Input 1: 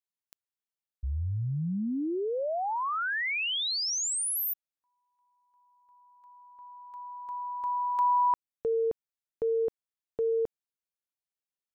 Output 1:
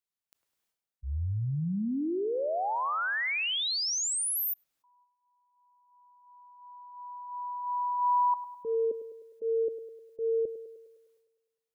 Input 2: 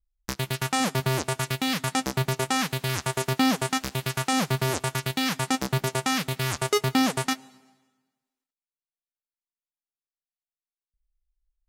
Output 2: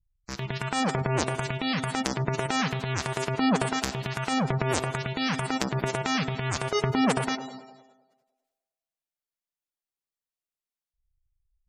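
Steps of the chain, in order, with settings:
transient designer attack −8 dB, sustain +12 dB
gate on every frequency bin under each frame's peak −20 dB strong
feedback echo with a band-pass in the loop 102 ms, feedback 62%, band-pass 600 Hz, level −11 dB

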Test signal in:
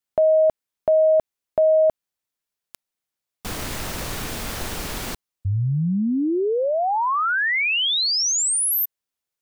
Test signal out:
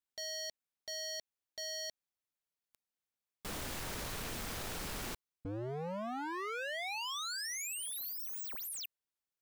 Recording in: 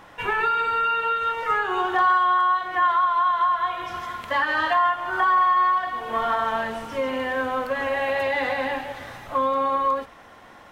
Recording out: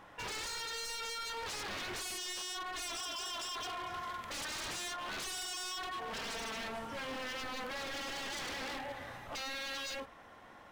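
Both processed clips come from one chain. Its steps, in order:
high-shelf EQ 3,300 Hz −2 dB
wave folding −28 dBFS
level −8 dB

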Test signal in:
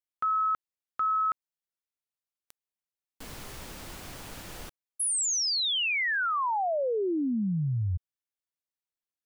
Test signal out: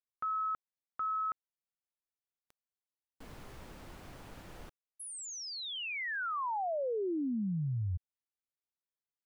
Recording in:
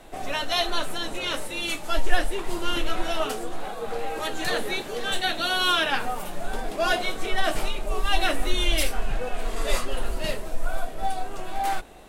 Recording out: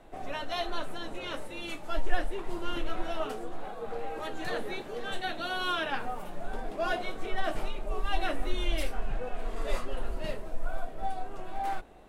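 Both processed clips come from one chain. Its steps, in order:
high-shelf EQ 2,800 Hz −11.5 dB
level −5.5 dB

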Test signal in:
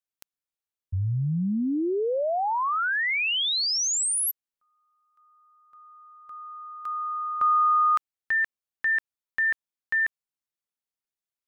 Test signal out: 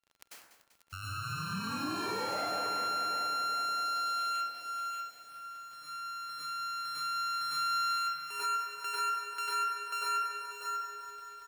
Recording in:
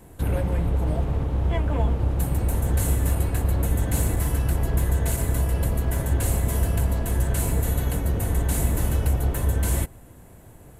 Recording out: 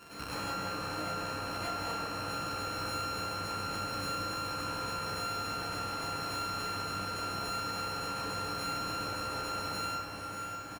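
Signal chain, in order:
samples sorted by size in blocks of 32 samples
single-tap delay 592 ms −15 dB
in parallel at −10.5 dB: soft clipping −27 dBFS
on the sum: high-pass filter 810 Hz 6 dB per octave
notch filter 3,600 Hz, Q 9.4
dense smooth reverb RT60 0.91 s, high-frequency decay 0.55×, pre-delay 85 ms, DRR −10 dB
surface crackle 41 per second −45 dBFS
high-shelf EQ 6,100 Hz −7.5 dB
downward compressor 3 to 1, threshold −40 dBFS
feedback echo at a low word length 194 ms, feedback 80%, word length 10 bits, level −10.5 dB

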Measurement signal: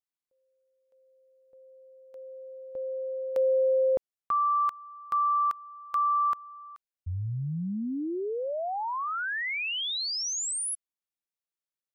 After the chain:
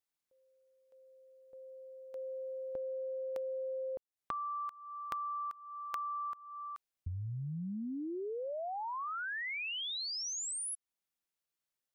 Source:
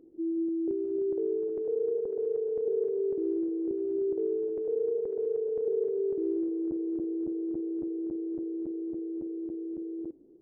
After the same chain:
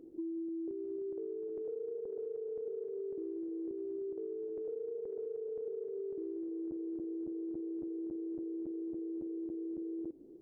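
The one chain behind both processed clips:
downward compressor 12 to 1, threshold −40 dBFS
level +2.5 dB

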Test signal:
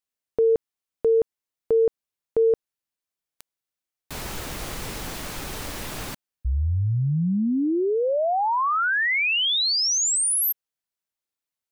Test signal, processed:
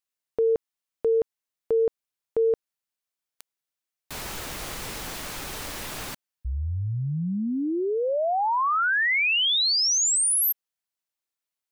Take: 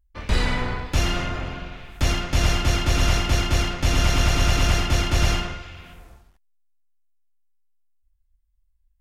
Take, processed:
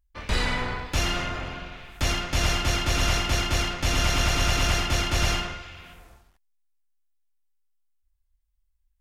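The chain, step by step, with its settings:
low-shelf EQ 470 Hz −5.5 dB

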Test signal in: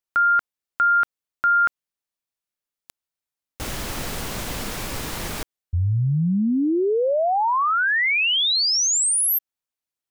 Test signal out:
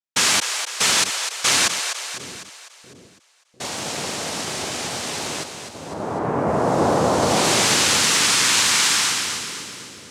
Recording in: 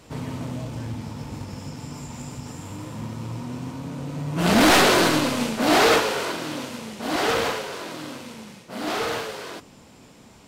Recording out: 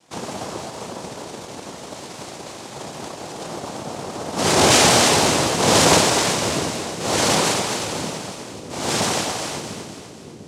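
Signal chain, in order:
high-pass filter 260 Hz 12 dB per octave
leveller curve on the samples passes 2
cochlear-implant simulation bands 2
pitch vibrato 5.1 Hz 14 cents
on a send: echo with a time of its own for lows and highs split 450 Hz, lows 698 ms, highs 251 ms, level −7.5 dB
on the sum: level −2 dB

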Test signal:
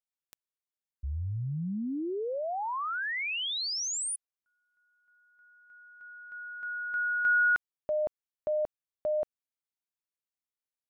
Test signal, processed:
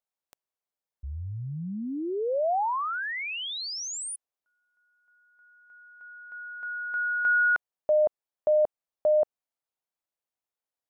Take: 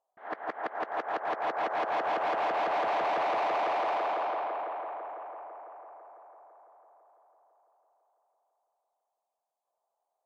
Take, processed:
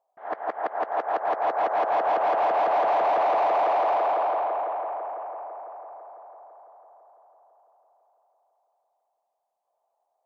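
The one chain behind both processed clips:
parametric band 690 Hz +10 dB 1.7 octaves
level −2 dB

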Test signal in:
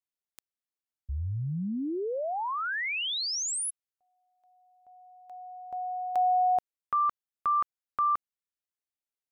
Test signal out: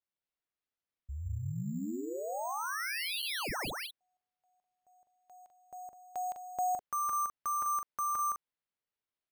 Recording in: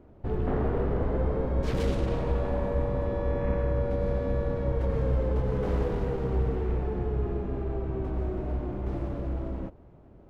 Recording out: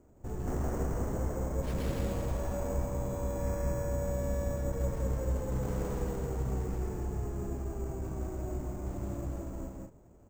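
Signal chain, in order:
loudspeakers that aren't time-aligned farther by 56 metres −2 dB, 70 metres −7 dB
dynamic equaliser 430 Hz, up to −5 dB, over −45 dBFS, Q 4.7
bad sample-rate conversion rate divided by 6×, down none, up hold
level −7.5 dB

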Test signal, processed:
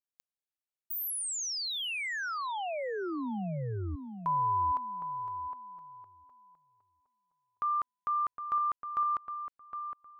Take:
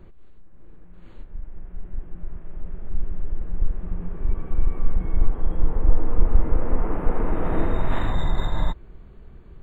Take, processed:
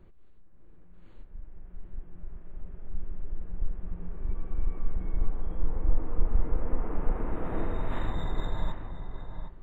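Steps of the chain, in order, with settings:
feedback echo with a low-pass in the loop 762 ms, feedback 20%, low-pass 1,900 Hz, level −7.5 dB
level −8.5 dB

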